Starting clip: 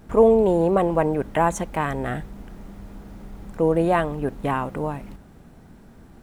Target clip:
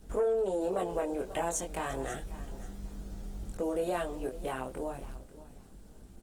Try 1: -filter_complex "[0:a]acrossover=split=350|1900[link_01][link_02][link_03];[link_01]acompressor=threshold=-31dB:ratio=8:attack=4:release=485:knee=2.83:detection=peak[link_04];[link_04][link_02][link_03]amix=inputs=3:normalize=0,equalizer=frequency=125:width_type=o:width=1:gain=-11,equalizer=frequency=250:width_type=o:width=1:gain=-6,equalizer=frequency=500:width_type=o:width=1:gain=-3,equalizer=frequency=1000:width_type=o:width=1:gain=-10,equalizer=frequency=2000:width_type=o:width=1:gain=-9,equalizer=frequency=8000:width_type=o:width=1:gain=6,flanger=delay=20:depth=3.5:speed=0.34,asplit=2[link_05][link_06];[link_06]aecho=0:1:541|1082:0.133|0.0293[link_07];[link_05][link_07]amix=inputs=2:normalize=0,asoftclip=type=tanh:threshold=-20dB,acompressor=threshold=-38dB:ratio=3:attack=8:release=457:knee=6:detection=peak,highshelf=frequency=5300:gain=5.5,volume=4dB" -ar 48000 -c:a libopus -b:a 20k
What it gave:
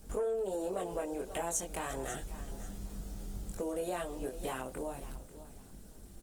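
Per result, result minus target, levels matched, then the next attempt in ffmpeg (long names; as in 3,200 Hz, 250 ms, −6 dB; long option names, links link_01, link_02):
downward compressor: peak gain reduction +5 dB; 8,000 Hz band +4.5 dB
-filter_complex "[0:a]acrossover=split=350|1900[link_01][link_02][link_03];[link_01]acompressor=threshold=-31dB:ratio=8:attack=4:release=485:knee=2.83:detection=peak[link_04];[link_04][link_02][link_03]amix=inputs=3:normalize=0,equalizer=frequency=125:width_type=o:width=1:gain=-11,equalizer=frequency=250:width_type=o:width=1:gain=-6,equalizer=frequency=500:width_type=o:width=1:gain=-3,equalizer=frequency=1000:width_type=o:width=1:gain=-10,equalizer=frequency=2000:width_type=o:width=1:gain=-9,equalizer=frequency=8000:width_type=o:width=1:gain=6,flanger=delay=20:depth=3.5:speed=0.34,asplit=2[link_05][link_06];[link_06]aecho=0:1:541|1082:0.133|0.0293[link_07];[link_05][link_07]amix=inputs=2:normalize=0,asoftclip=type=tanh:threshold=-20dB,acompressor=threshold=-30.5dB:ratio=3:attack=8:release=457:knee=6:detection=peak,highshelf=frequency=5300:gain=5.5,volume=4dB" -ar 48000 -c:a libopus -b:a 20k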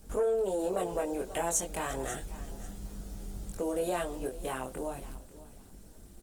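8,000 Hz band +5.0 dB
-filter_complex "[0:a]acrossover=split=350|1900[link_01][link_02][link_03];[link_01]acompressor=threshold=-31dB:ratio=8:attack=4:release=485:knee=2.83:detection=peak[link_04];[link_04][link_02][link_03]amix=inputs=3:normalize=0,equalizer=frequency=125:width_type=o:width=1:gain=-11,equalizer=frequency=250:width_type=o:width=1:gain=-6,equalizer=frequency=500:width_type=o:width=1:gain=-3,equalizer=frequency=1000:width_type=o:width=1:gain=-10,equalizer=frequency=2000:width_type=o:width=1:gain=-9,equalizer=frequency=8000:width_type=o:width=1:gain=6,flanger=delay=20:depth=3.5:speed=0.34,asplit=2[link_05][link_06];[link_06]aecho=0:1:541|1082:0.133|0.0293[link_07];[link_05][link_07]amix=inputs=2:normalize=0,asoftclip=type=tanh:threshold=-20dB,acompressor=threshold=-30.5dB:ratio=3:attack=8:release=457:knee=6:detection=peak,highshelf=frequency=5300:gain=-3,volume=4dB" -ar 48000 -c:a libopus -b:a 20k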